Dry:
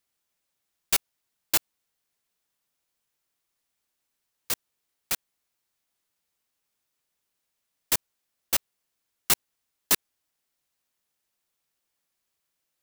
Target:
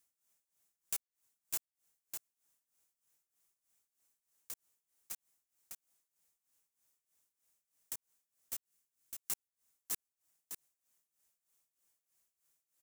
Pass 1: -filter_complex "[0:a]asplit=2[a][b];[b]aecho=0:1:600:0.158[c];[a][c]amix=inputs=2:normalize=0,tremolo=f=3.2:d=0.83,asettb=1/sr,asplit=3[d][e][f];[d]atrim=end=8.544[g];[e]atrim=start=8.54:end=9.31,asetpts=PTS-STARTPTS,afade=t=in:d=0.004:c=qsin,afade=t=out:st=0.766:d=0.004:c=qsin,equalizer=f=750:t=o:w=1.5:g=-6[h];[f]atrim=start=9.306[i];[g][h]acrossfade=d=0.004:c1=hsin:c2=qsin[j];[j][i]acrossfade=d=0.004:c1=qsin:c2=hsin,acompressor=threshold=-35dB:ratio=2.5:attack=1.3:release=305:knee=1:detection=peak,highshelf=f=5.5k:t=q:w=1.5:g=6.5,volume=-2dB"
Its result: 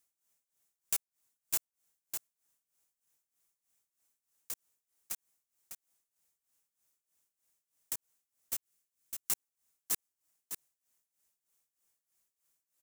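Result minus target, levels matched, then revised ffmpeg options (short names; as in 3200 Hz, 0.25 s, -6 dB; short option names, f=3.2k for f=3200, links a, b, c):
compressor: peak gain reduction -5.5 dB
-filter_complex "[0:a]asplit=2[a][b];[b]aecho=0:1:600:0.158[c];[a][c]amix=inputs=2:normalize=0,tremolo=f=3.2:d=0.83,asettb=1/sr,asplit=3[d][e][f];[d]atrim=end=8.544[g];[e]atrim=start=8.54:end=9.31,asetpts=PTS-STARTPTS,afade=t=in:d=0.004:c=qsin,afade=t=out:st=0.766:d=0.004:c=qsin,equalizer=f=750:t=o:w=1.5:g=-6[h];[f]atrim=start=9.306[i];[g][h]acrossfade=d=0.004:c1=hsin:c2=qsin[j];[j][i]acrossfade=d=0.004:c1=qsin:c2=hsin,acompressor=threshold=-44dB:ratio=2.5:attack=1.3:release=305:knee=1:detection=peak,highshelf=f=5.5k:t=q:w=1.5:g=6.5,volume=-2dB"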